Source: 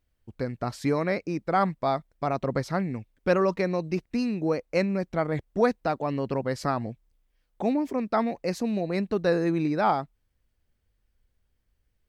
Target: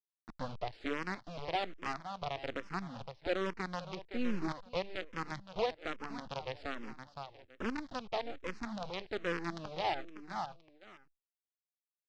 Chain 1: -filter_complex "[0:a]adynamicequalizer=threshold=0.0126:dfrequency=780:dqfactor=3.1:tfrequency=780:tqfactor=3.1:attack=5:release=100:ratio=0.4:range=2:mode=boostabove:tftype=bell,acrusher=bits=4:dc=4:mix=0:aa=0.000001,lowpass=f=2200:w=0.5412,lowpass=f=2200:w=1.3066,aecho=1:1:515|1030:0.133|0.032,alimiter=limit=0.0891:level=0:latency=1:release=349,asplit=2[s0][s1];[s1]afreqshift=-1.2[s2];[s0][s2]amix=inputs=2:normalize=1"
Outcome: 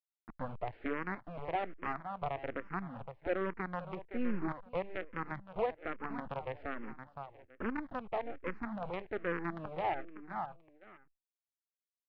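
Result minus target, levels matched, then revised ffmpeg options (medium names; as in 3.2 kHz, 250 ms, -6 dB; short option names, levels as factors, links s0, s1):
4 kHz band -12.5 dB
-filter_complex "[0:a]adynamicequalizer=threshold=0.0126:dfrequency=780:dqfactor=3.1:tfrequency=780:tqfactor=3.1:attack=5:release=100:ratio=0.4:range=2:mode=boostabove:tftype=bell,acrusher=bits=4:dc=4:mix=0:aa=0.000001,lowpass=f=4800:w=0.5412,lowpass=f=4800:w=1.3066,aecho=1:1:515|1030:0.133|0.032,alimiter=limit=0.0891:level=0:latency=1:release=349,asplit=2[s0][s1];[s1]afreqshift=-1.2[s2];[s0][s2]amix=inputs=2:normalize=1"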